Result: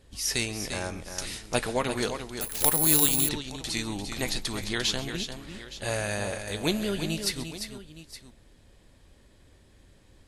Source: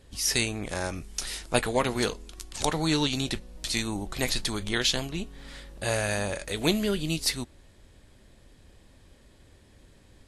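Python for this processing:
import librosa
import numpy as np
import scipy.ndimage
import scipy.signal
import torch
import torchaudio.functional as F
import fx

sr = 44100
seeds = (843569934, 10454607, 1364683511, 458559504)

p1 = x + fx.echo_multitap(x, sr, ms=(134, 347, 867), db=(-18.0, -8.0, -15.5), dry=0)
p2 = fx.resample_bad(p1, sr, factor=4, down='none', up='zero_stuff', at=(2.41, 3.29))
y = p2 * 10.0 ** (-2.5 / 20.0)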